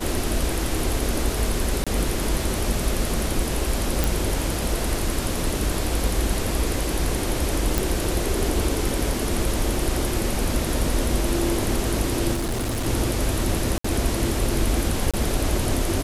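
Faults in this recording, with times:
0:01.84–0:01.87: drop-out 26 ms
0:04.04: click
0:07.78: click
0:12.33–0:12.87: clipping −22 dBFS
0:13.78–0:13.84: drop-out 64 ms
0:15.11–0:15.14: drop-out 26 ms

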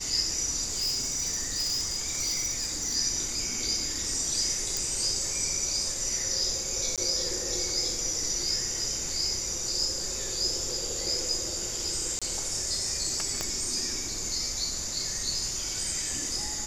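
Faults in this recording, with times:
0:00.71–0:02.96: clipping −25 dBFS
0:04.77: click
0:06.96–0:06.98: drop-out 17 ms
0:12.19–0:12.22: drop-out 26 ms
0:13.41: click −15 dBFS

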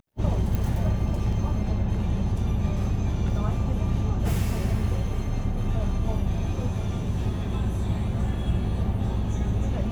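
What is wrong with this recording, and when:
0:00.55: click

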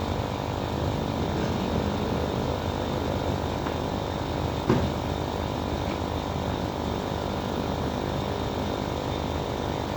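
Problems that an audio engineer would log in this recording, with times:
mains buzz 50 Hz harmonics 20 −33 dBFS

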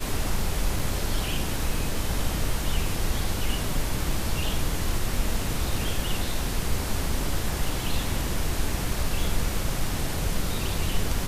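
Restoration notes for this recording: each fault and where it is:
0:00.79: drop-out 3.5 ms

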